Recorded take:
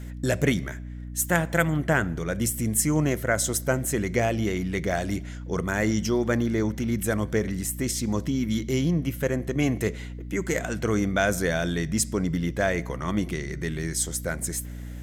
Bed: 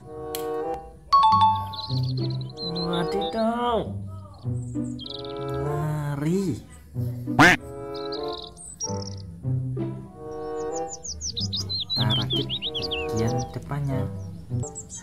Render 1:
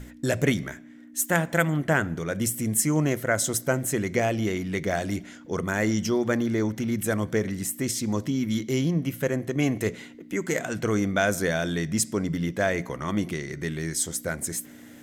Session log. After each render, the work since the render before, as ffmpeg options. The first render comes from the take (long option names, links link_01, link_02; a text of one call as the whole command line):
ffmpeg -i in.wav -af "bandreject=frequency=60:width_type=h:width=6,bandreject=frequency=120:width_type=h:width=6,bandreject=frequency=180:width_type=h:width=6" out.wav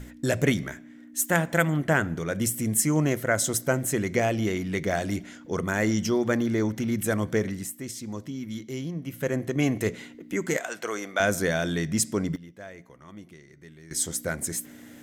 ffmpeg -i in.wav -filter_complex "[0:a]asettb=1/sr,asplit=3[link_01][link_02][link_03];[link_01]atrim=end=10.574[link_04];[link_02]atrim=start=10.57:end=11.2,asetpts=PTS-STARTPTS,afade=type=in:duration=0.004:curve=qsin,afade=type=out:start_time=0.626:duration=0.004:curve=qsin,highpass=550[link_05];[link_03]atrim=start=11.196[link_06];[link_04][link_05]acrossfade=duration=0.004:curve1=hsin:curve2=qsin[link_07];[link_07][link_06]acrossfade=duration=0.004:curve1=qsin:curve2=hsin,asplit=5[link_08][link_09][link_10][link_11][link_12];[link_08]atrim=end=7.77,asetpts=PTS-STARTPTS,afade=type=out:start_time=7.43:duration=0.34:silence=0.375837[link_13];[link_09]atrim=start=7.77:end=9.03,asetpts=PTS-STARTPTS,volume=-8.5dB[link_14];[link_10]atrim=start=9.03:end=12.36,asetpts=PTS-STARTPTS,afade=type=in:duration=0.34:silence=0.375837,afade=type=out:start_time=3.15:duration=0.18:curve=log:silence=0.125893[link_15];[link_11]atrim=start=12.36:end=13.91,asetpts=PTS-STARTPTS,volume=-18dB[link_16];[link_12]atrim=start=13.91,asetpts=PTS-STARTPTS,afade=type=in:duration=0.18:curve=log:silence=0.125893[link_17];[link_13][link_14][link_15][link_16][link_17]concat=n=5:v=0:a=1" out.wav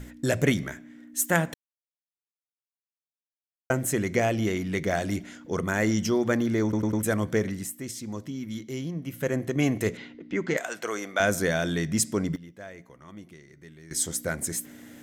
ffmpeg -i in.wav -filter_complex "[0:a]asettb=1/sr,asplit=3[link_01][link_02][link_03];[link_01]atrim=end=9.974[link_04];[link_02]atrim=start=9.97:end=10.57,asetpts=PTS-STARTPTS,afade=type=in:duration=0.004:curve=qsin,afade=type=out:start_time=0.596:duration=0.004:curve=qsin,lowpass=frequency=4900:width=0.5412,lowpass=frequency=4900:width=1.3066[link_05];[link_03]atrim=start=10.566[link_06];[link_04][link_05]acrossfade=duration=0.004:curve1=hsin:curve2=qsin[link_07];[link_07][link_06]acrossfade=duration=0.004:curve1=qsin:curve2=hsin,asplit=7[link_08][link_09][link_10][link_11][link_12][link_13][link_14];[link_08]atrim=end=1.54,asetpts=PTS-STARTPTS,afade=type=out:start_time=1.536:duration=0.004:curve=hsin[link_15];[link_09]atrim=start=1.54:end=3.7,asetpts=PTS-STARTPTS,volume=0[link_16];[link_10]atrim=start=3.7:end=6.732,asetpts=PTS-STARTPTS,afade=type=in:duration=0.004:curve=hsin[link_17];[link_11]atrim=start=6.628:end=6.732[link_18];[link_12]atrim=start=6.628:end=6.732[link_19];[link_13]atrim=start=6.628:end=6.732[link_20];[link_14]atrim=start=7.028[link_21];[link_15][link_16][link_17]concat=n=3:v=0:a=1[link_22];[link_22][link_18]acrossfade=duration=0.004:curve1=hsin:curve2=hsin[link_23];[link_23][link_19]acrossfade=duration=0.004:curve1=hsin:curve2=hsin[link_24];[link_24][link_20]acrossfade=duration=0.004:curve1=hsin:curve2=hsin[link_25];[link_25][link_21]acrossfade=duration=0.004:curve1=hsin:curve2=hsin" out.wav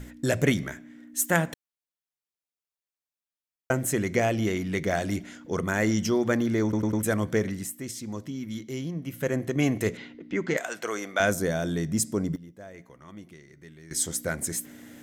ffmpeg -i in.wav -filter_complex "[0:a]asettb=1/sr,asplit=3[link_01][link_02][link_03];[link_01]atrim=end=11.334[link_04];[link_02]atrim=start=11.33:end=12.74,asetpts=PTS-STARTPTS,afade=type=in:duration=0.004:curve=qsin,afade=type=out:start_time=1.406:duration=0.004:curve=qsin,equalizer=frequency=2400:width=0.58:gain=-8[link_05];[link_03]atrim=start=12.736[link_06];[link_04][link_05]acrossfade=duration=0.004:curve1=hsin:curve2=qsin[link_07];[link_07][link_06]acrossfade=duration=0.004:curve1=qsin:curve2=hsin" out.wav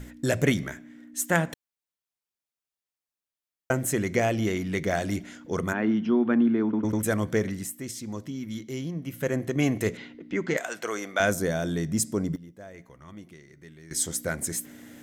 ffmpeg -i in.wav -filter_complex "[0:a]asettb=1/sr,asplit=3[link_01][link_02][link_03];[link_01]atrim=end=1.104[link_04];[link_02]atrim=start=1.1:end=1.5,asetpts=PTS-STARTPTS,afade=type=in:duration=0.004:curve=qsin,afade=type=out:start_time=0.396:duration=0.004:curve=qsin,highshelf=frequency=12000:gain=-10.5[link_05];[link_03]atrim=start=1.496[link_06];[link_04][link_05]acrossfade=duration=0.004:curve1=hsin:curve2=qsin[link_07];[link_07][link_06]acrossfade=duration=0.004:curve1=qsin:curve2=hsin,asplit=3[link_08][link_09][link_10];[link_08]afade=type=out:start_time=5.72:duration=0.02[link_11];[link_09]highpass=240,equalizer=frequency=240:width_type=q:width=4:gain=10,equalizer=frequency=550:width_type=q:width=4:gain=-9,equalizer=frequency=2000:width_type=q:width=4:gain=-9,lowpass=frequency=2800:width=0.5412,lowpass=frequency=2800:width=1.3066,afade=type=in:start_time=5.72:duration=0.02,afade=type=out:start_time=6.83:duration=0.02[link_12];[link_10]afade=type=in:start_time=6.83:duration=0.02[link_13];[link_11][link_12][link_13]amix=inputs=3:normalize=0,asettb=1/sr,asplit=3[link_14][link_15][link_16];[link_14]atrim=end=12.664[link_17];[link_15]atrim=start=12.66:end=13.13,asetpts=PTS-STARTPTS,afade=type=in:duration=0.004:curve=qsin,afade=type=out:start_time=0.466:duration=0.004:curve=qsin,asubboost=boost=12:cutoff=150[link_18];[link_16]atrim=start=13.126[link_19];[link_17][link_18]acrossfade=duration=0.004:curve1=hsin:curve2=qsin[link_20];[link_20][link_19]acrossfade=duration=0.004:curve1=qsin:curve2=hsin" out.wav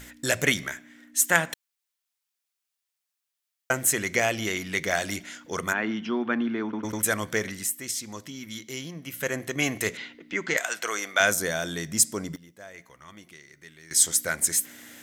ffmpeg -i in.wav -af "tiltshelf=frequency=720:gain=-8" out.wav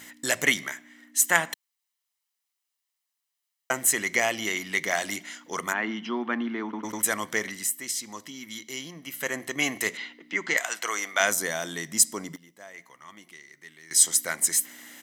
ffmpeg -i in.wav -af "highpass=260,aecho=1:1:1:0.37" out.wav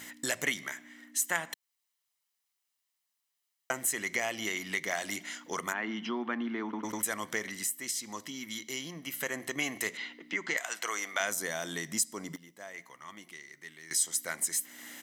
ffmpeg -i in.wav -af "acompressor=threshold=-34dB:ratio=2" out.wav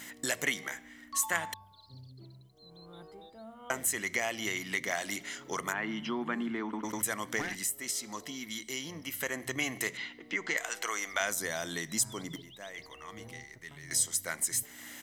ffmpeg -i in.wav -i bed.wav -filter_complex "[1:a]volume=-25dB[link_01];[0:a][link_01]amix=inputs=2:normalize=0" out.wav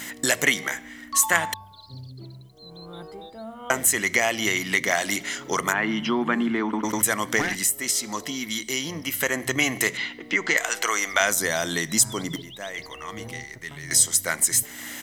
ffmpeg -i in.wav -af "volume=10.5dB" out.wav